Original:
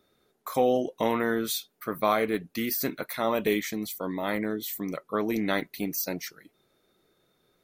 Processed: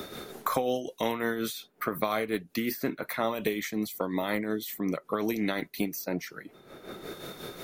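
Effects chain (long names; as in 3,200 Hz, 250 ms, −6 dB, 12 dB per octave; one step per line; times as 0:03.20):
amplitude tremolo 5.5 Hz, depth 54%
multiband upward and downward compressor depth 100%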